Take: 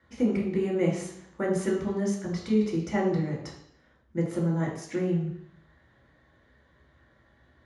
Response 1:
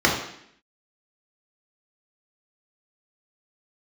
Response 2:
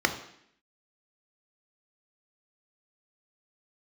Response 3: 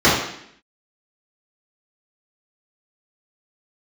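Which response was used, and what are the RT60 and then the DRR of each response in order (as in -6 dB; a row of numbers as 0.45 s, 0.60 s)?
1; 0.70 s, 0.70 s, 0.70 s; -2.0 dB, 6.5 dB, -10.5 dB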